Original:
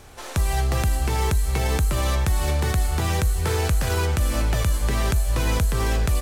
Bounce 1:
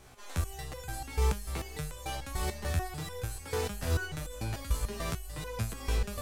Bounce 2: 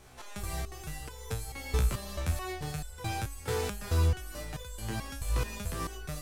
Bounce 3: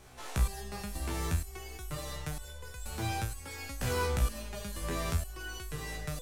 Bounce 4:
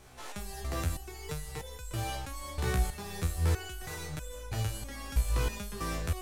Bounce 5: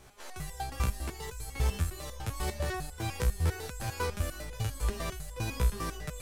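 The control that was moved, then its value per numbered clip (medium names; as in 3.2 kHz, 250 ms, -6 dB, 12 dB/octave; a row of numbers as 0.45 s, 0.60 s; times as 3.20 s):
resonator arpeggio, rate: 6.8 Hz, 4.6 Hz, 2.1 Hz, 3.1 Hz, 10 Hz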